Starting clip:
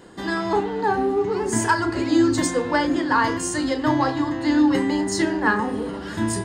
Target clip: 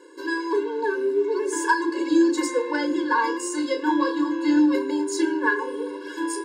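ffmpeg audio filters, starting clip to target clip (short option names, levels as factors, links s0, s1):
-filter_complex "[0:a]asettb=1/sr,asplit=3[s0][s1][s2];[s0]atrim=end=3.554[s3];[s1]atrim=start=3.55:end=4.6,asetpts=PTS-STARTPTS,afade=t=in:d=0.004:c=qsin,afade=t=out:st=1.046:d=0.004:c=qsin,asplit=2[s4][s5];[s5]adelay=24,volume=0.398[s6];[s4][s6]amix=inputs=2:normalize=0,atrim=end_sample=46305[s7];[s2]atrim=start=4.596[s8];[s3][s7]acrossfade=d=0.004:c1=hsin:c2=qsin[s9];[s9][s8]acrossfade=d=0.004:c1=qsin:c2=hsin,afftfilt=real='re*eq(mod(floor(b*sr/1024/290),2),1)':imag='im*eq(mod(floor(b*sr/1024/290),2),1)':win_size=1024:overlap=0.75"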